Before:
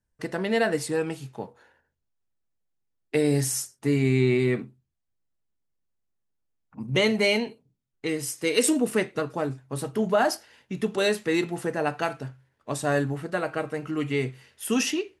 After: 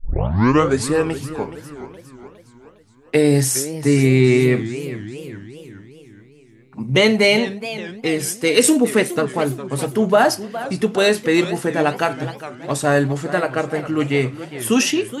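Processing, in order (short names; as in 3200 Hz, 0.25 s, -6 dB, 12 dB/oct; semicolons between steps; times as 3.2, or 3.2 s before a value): tape start at the beginning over 0.86 s; warbling echo 0.415 s, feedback 52%, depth 218 cents, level -13.5 dB; gain +8 dB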